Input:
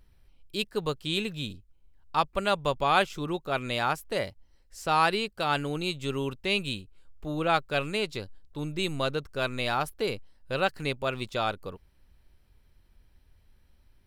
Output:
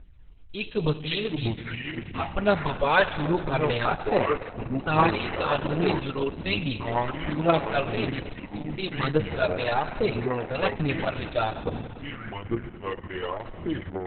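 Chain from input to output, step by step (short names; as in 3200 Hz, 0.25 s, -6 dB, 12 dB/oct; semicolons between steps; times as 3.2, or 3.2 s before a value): 1.52–2.33 resonator 62 Hz, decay 0.19 s, harmonics odd, mix 100%; 3.33–3.88 low shelf 200 Hz +6.5 dB; 10.01–10.62 HPF 48 Hz 6 dB/oct; phaser 1.2 Hz, delay 2.3 ms, feedback 61%; air absorption 170 m; FDN reverb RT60 2.6 s, high-frequency decay 0.95×, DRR 11 dB; echoes that change speed 0.303 s, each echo -5 st, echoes 2, each echo -6 dB; gain +2.5 dB; Opus 6 kbps 48000 Hz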